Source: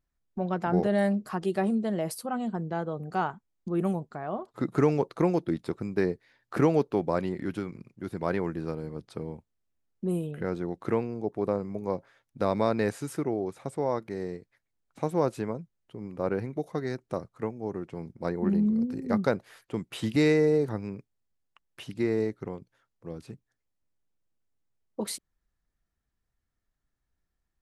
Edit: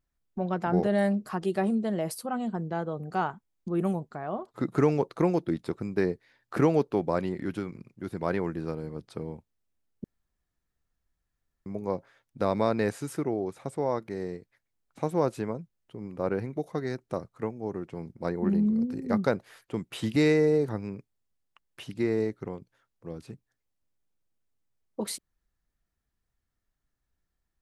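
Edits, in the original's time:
10.04–11.66 s: room tone

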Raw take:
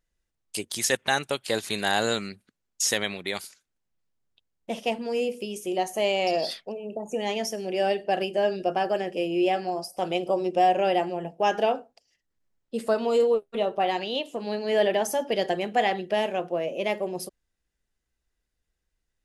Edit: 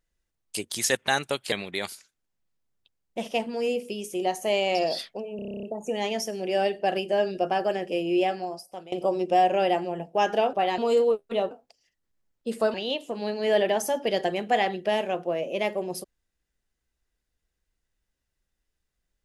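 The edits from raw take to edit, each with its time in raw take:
1.52–3.04 s: delete
6.88 s: stutter 0.03 s, 10 plays
9.45–10.17 s: fade out, to -21 dB
11.78–13.01 s: swap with 13.74–13.99 s

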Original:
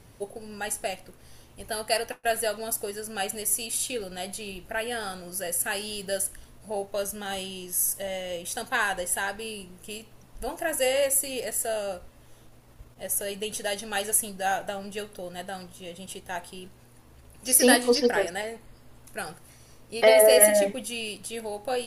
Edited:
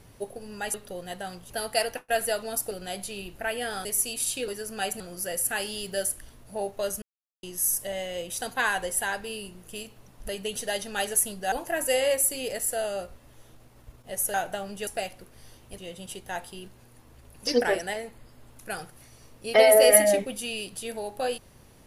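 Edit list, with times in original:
0.74–1.65 s: swap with 15.02–15.78 s
2.86–3.38 s: swap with 4.01–5.15 s
7.17–7.58 s: mute
13.26–14.49 s: move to 10.44 s
17.47–17.95 s: delete

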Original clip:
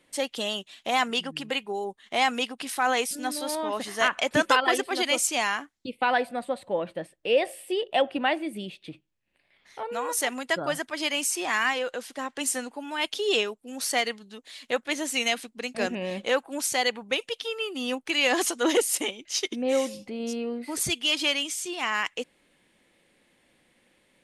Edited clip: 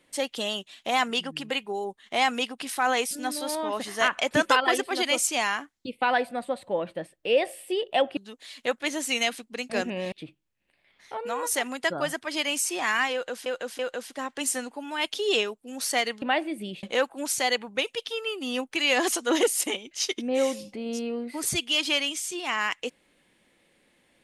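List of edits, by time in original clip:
8.17–8.78 s: swap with 14.22–16.17 s
11.79–12.12 s: loop, 3 plays

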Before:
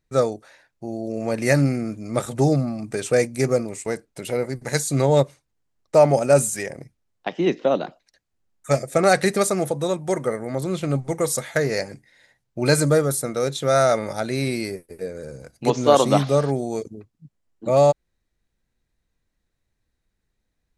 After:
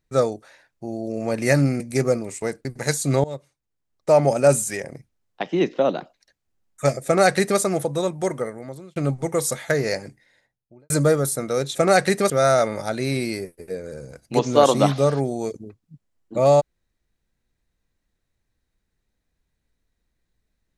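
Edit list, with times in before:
1.80–3.24 s: delete
4.09–4.51 s: delete
5.10–6.20 s: fade in, from -20 dB
8.91–9.46 s: copy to 13.61 s
10.06–10.82 s: fade out linear
11.88–12.76 s: studio fade out

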